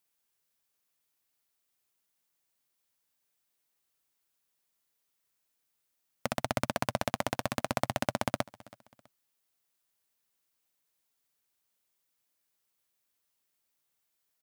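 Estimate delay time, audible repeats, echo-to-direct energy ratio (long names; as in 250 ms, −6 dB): 326 ms, 2, −21.5 dB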